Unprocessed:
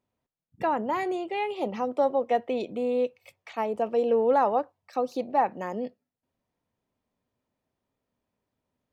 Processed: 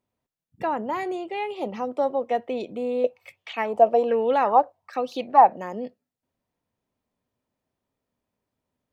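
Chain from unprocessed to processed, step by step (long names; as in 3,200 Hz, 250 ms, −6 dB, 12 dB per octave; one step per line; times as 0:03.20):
0:03.04–0:05.56: auto-filter bell 1.2 Hz 610–3,300 Hz +15 dB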